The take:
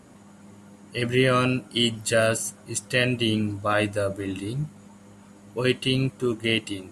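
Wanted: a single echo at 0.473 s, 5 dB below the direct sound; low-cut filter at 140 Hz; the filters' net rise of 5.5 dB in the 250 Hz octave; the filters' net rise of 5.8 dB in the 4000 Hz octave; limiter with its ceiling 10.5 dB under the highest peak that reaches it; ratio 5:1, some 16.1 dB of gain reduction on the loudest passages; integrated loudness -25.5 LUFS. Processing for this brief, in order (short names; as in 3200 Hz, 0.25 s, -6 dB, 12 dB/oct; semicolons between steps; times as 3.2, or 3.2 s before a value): HPF 140 Hz; bell 250 Hz +7 dB; bell 4000 Hz +9 dB; compressor 5:1, threshold -31 dBFS; limiter -26 dBFS; echo 0.473 s -5 dB; gain +10.5 dB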